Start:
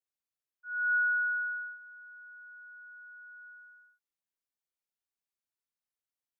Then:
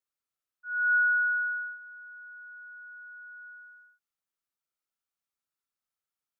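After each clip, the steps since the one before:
parametric band 1,300 Hz +9.5 dB 0.27 octaves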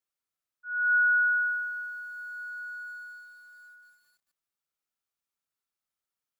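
feedback echo at a low word length 209 ms, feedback 80%, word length 10 bits, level −10.5 dB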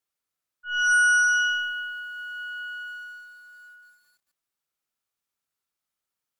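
harmonic generator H 6 −14 dB, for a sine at −18.5 dBFS
level +3.5 dB

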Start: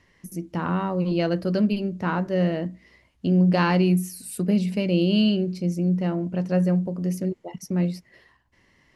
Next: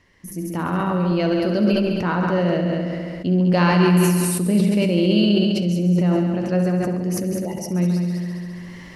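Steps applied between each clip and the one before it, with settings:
echo machine with several playback heads 68 ms, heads all three, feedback 50%, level −9.5 dB
level that may fall only so fast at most 22 dB per second
level +1.5 dB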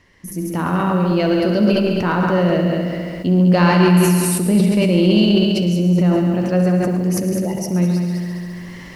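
in parallel at −5 dB: soft clipping −13 dBFS, distortion −17 dB
on the sum: feedback echo at a low word length 110 ms, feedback 55%, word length 7 bits, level −13 dB

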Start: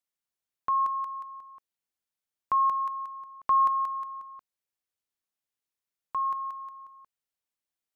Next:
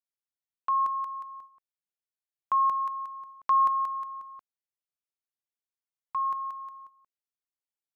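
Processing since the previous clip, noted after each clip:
noise gate −47 dBFS, range −11 dB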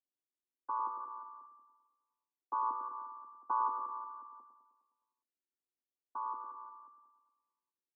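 channel vocoder with a chord as carrier minor triad, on B3
Gaussian smoothing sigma 9.7 samples
on a send: repeating echo 103 ms, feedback 60%, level −7.5 dB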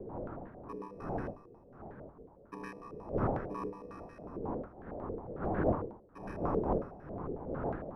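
samples in bit-reversed order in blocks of 64 samples
wind on the microphone 390 Hz −41 dBFS
low-pass on a step sequencer 11 Hz 450–1,600 Hz

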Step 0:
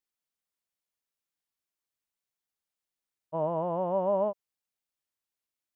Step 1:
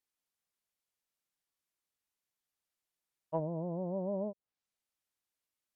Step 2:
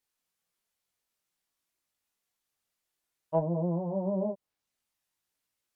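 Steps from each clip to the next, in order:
treble cut that deepens with the level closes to 330 Hz, closed at −27.5 dBFS
multi-voice chorus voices 2, 0.56 Hz, delay 20 ms, depth 3.1 ms; level +8.5 dB

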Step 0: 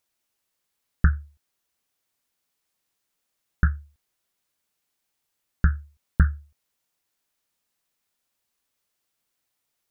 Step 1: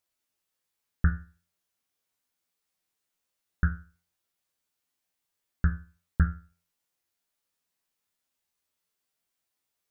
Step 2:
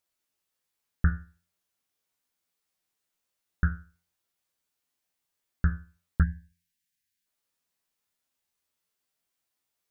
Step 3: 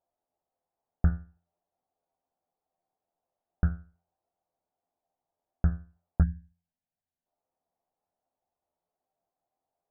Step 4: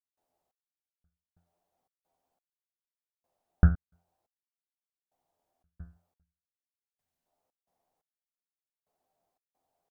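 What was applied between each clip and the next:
tuned comb filter 86 Hz, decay 0.37 s, harmonics all, mix 80%; level +3 dB
time-frequency box erased 0:06.23–0:07.26, 270–1,500 Hz
low-pass with resonance 730 Hz, resonance Q 4.9
gate pattern ".xx.....xxx" 88 BPM −60 dB; level +5.5 dB

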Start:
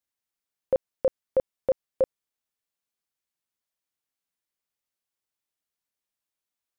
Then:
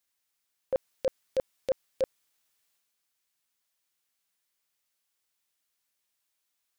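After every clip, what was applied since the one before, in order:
transient designer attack −10 dB, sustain +5 dB
tilt shelving filter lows −4 dB
level +5 dB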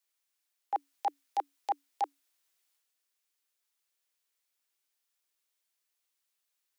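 frequency shifter +280 Hz
level −2.5 dB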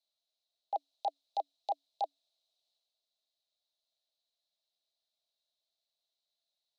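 pair of resonant band-passes 1,600 Hz, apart 2.6 octaves
level +8.5 dB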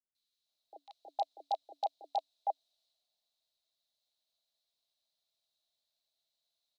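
three-band delay without the direct sound lows, highs, mids 150/460 ms, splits 410/1,500 Hz
level +2 dB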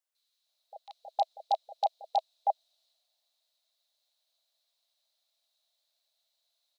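linear-phase brick-wall high-pass 490 Hz
level +6 dB

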